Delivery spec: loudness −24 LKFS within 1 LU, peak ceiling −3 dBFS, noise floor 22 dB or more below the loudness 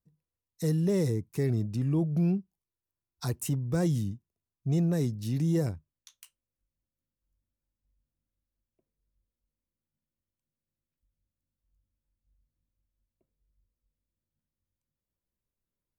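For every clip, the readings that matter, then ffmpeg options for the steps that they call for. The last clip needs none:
integrated loudness −29.5 LKFS; sample peak −17.0 dBFS; target loudness −24.0 LKFS
→ -af "volume=5.5dB"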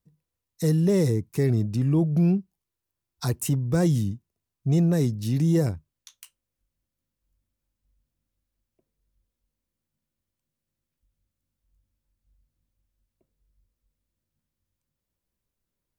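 integrated loudness −24.0 LKFS; sample peak −11.5 dBFS; background noise floor −86 dBFS

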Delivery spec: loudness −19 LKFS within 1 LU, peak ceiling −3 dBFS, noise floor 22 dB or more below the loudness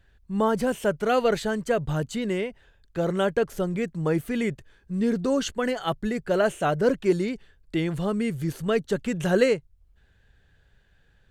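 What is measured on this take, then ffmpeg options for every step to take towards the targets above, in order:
integrated loudness −26.0 LKFS; sample peak −7.5 dBFS; target loudness −19.0 LKFS
→ -af "volume=7dB,alimiter=limit=-3dB:level=0:latency=1"

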